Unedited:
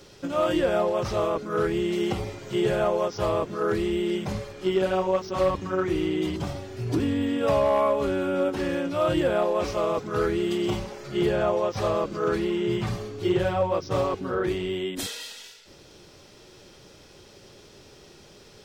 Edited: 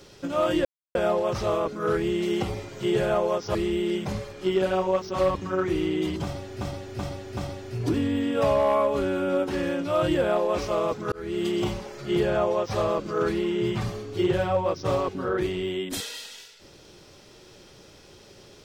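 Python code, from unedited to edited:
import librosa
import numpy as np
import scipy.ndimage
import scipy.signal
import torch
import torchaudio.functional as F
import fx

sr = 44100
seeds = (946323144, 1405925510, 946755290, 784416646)

y = fx.edit(x, sr, fx.insert_silence(at_s=0.65, length_s=0.3),
    fx.cut(start_s=3.25, length_s=0.5),
    fx.repeat(start_s=6.43, length_s=0.38, count=4),
    fx.fade_in_span(start_s=10.18, length_s=0.32), tone=tone)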